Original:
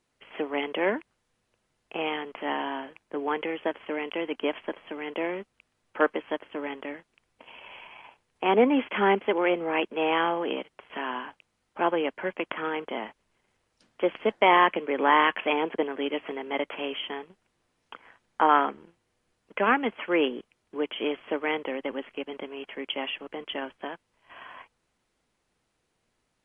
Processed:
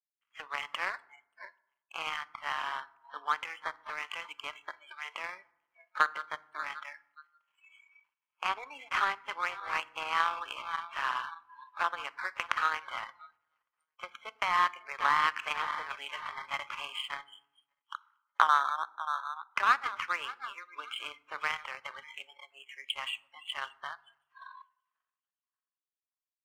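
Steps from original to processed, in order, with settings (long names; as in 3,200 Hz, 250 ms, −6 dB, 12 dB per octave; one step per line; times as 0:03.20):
feedback delay that plays each chunk backwards 291 ms, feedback 64%, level −12.5 dB
high-shelf EQ 2,000 Hz +6.5 dB
downward compressor 4 to 1, threshold −25 dBFS, peak gain reduction 11 dB
high-pass with resonance 1,200 Hz, resonance Q 4.4
power curve on the samples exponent 1.4
noise reduction from a noise print of the clip's start 27 dB
convolution reverb RT60 0.80 s, pre-delay 4 ms, DRR 17.5 dB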